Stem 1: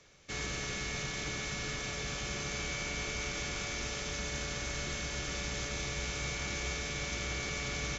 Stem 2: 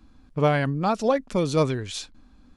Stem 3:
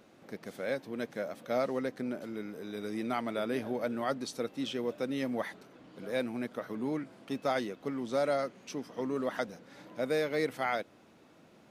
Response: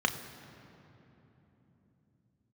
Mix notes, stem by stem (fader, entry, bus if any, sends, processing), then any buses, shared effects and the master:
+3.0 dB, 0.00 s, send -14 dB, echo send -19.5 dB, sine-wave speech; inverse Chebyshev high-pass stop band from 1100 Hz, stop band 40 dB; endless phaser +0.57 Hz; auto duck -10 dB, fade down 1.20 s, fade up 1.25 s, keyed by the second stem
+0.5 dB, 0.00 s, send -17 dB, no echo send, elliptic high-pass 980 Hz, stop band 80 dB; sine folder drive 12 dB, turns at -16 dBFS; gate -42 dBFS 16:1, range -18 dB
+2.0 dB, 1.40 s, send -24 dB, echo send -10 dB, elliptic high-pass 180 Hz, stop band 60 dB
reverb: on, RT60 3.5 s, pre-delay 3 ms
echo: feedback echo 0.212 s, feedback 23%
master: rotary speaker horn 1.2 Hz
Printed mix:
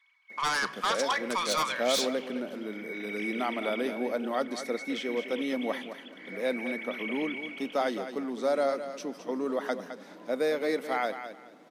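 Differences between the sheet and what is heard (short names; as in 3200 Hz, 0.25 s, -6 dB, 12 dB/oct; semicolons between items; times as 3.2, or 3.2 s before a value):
stem 2 +0.5 dB -> -8.0 dB; stem 3: entry 1.40 s -> 0.30 s; master: missing rotary speaker horn 1.2 Hz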